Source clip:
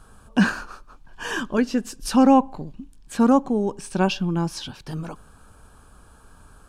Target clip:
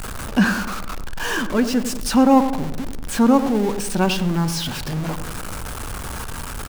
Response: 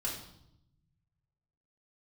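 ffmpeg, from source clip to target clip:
-filter_complex "[0:a]aeval=exprs='val(0)+0.5*0.0562*sgn(val(0))':channel_layout=same,asplit=2[link_01][link_02];[link_02]adelay=96,lowpass=frequency=1000:poles=1,volume=-8.5dB,asplit=2[link_03][link_04];[link_04]adelay=96,lowpass=frequency=1000:poles=1,volume=0.54,asplit=2[link_05][link_06];[link_06]adelay=96,lowpass=frequency=1000:poles=1,volume=0.54,asplit=2[link_07][link_08];[link_08]adelay=96,lowpass=frequency=1000:poles=1,volume=0.54,asplit=2[link_09][link_10];[link_10]adelay=96,lowpass=frequency=1000:poles=1,volume=0.54,asplit=2[link_11][link_12];[link_12]adelay=96,lowpass=frequency=1000:poles=1,volume=0.54[link_13];[link_01][link_03][link_05][link_07][link_09][link_11][link_13]amix=inputs=7:normalize=0,asplit=2[link_14][link_15];[1:a]atrim=start_sample=2205[link_16];[link_15][link_16]afir=irnorm=-1:irlink=0,volume=-23.5dB[link_17];[link_14][link_17]amix=inputs=2:normalize=0"

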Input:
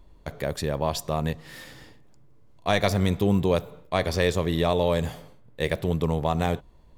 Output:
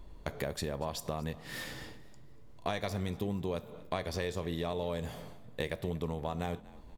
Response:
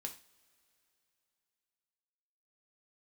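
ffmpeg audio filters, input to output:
-filter_complex "[0:a]acompressor=threshold=-35dB:ratio=6,asplit=4[link_01][link_02][link_03][link_04];[link_02]adelay=238,afreqshift=43,volume=-20.5dB[link_05];[link_03]adelay=476,afreqshift=86,volume=-29.1dB[link_06];[link_04]adelay=714,afreqshift=129,volume=-37.8dB[link_07];[link_01][link_05][link_06][link_07]amix=inputs=4:normalize=0,asplit=2[link_08][link_09];[1:a]atrim=start_sample=2205[link_10];[link_09][link_10]afir=irnorm=-1:irlink=0,volume=-6dB[link_11];[link_08][link_11]amix=inputs=2:normalize=0"

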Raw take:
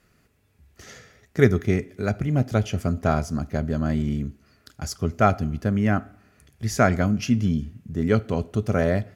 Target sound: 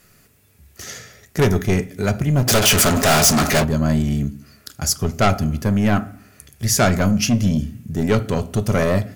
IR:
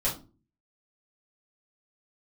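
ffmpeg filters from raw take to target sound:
-filter_complex "[0:a]asoftclip=type=tanh:threshold=-17dB,asplit=3[link_01][link_02][link_03];[link_01]afade=type=out:start_time=2.47:duration=0.02[link_04];[link_02]asplit=2[link_05][link_06];[link_06]highpass=frequency=720:poles=1,volume=34dB,asoftclip=type=tanh:threshold=-17dB[link_07];[link_05][link_07]amix=inputs=2:normalize=0,lowpass=frequency=6200:poles=1,volume=-6dB,afade=type=in:start_time=2.47:duration=0.02,afade=type=out:start_time=3.63:duration=0.02[link_08];[link_03]afade=type=in:start_time=3.63:duration=0.02[link_09];[link_04][link_08][link_09]amix=inputs=3:normalize=0,crystalizer=i=2.5:c=0,asplit=2[link_10][link_11];[1:a]atrim=start_sample=2205,lowpass=2900[link_12];[link_11][link_12]afir=irnorm=-1:irlink=0,volume=-19.5dB[link_13];[link_10][link_13]amix=inputs=2:normalize=0,volume=5.5dB"

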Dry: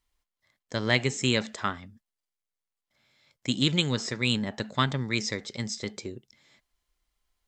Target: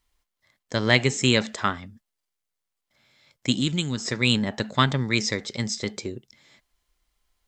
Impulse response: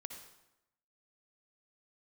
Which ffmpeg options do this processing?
-filter_complex "[0:a]asplit=3[link_01][link_02][link_03];[link_01]afade=type=out:start_time=3.6:duration=0.02[link_04];[link_02]equalizer=frequency=125:width_type=o:width=1:gain=-5,equalizer=frequency=500:width_type=o:width=1:gain=-11,equalizer=frequency=1000:width_type=o:width=1:gain=-6,equalizer=frequency=2000:width_type=o:width=1:gain=-7,equalizer=frequency=4000:width_type=o:width=1:gain=-7,afade=type=in:start_time=3.6:duration=0.02,afade=type=out:start_time=4.05:duration=0.02[link_05];[link_03]afade=type=in:start_time=4.05:duration=0.02[link_06];[link_04][link_05][link_06]amix=inputs=3:normalize=0,volume=5dB"

